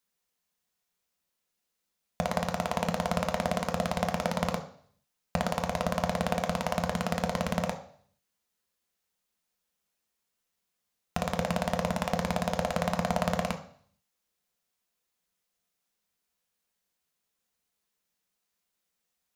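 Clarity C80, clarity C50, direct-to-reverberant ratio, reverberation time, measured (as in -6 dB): 15.0 dB, 11.5 dB, 4.5 dB, 0.55 s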